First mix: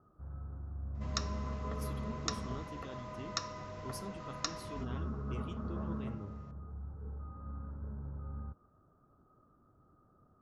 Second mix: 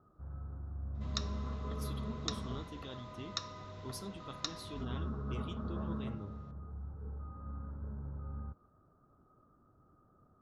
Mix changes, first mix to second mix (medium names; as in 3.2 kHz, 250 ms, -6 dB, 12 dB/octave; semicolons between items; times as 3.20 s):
second sound -5.5 dB; master: add peaking EQ 3.7 kHz +10.5 dB 0.42 oct